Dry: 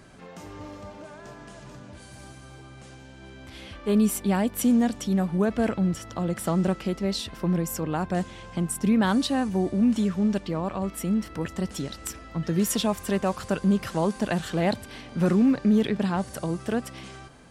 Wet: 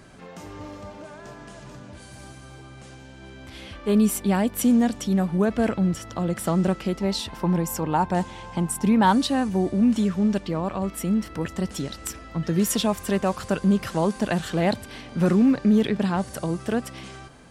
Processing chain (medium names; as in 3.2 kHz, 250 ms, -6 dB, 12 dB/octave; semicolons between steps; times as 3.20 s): 7.00–9.13 s: peaking EQ 890 Hz +14.5 dB 0.23 oct; trim +2 dB